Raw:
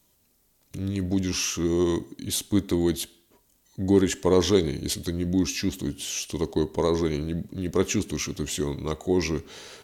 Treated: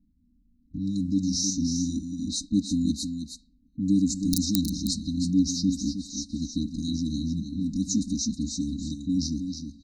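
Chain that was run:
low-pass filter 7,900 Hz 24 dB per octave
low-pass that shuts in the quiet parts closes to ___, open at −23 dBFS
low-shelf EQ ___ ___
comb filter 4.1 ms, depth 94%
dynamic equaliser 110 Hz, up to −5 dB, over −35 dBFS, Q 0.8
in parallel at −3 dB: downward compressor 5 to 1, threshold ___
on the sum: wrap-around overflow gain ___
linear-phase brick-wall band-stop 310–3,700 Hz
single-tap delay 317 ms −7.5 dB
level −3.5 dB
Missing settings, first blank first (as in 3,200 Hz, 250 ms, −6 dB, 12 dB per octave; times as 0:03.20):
730 Hz, 290 Hz, +3.5 dB, −32 dBFS, 5.5 dB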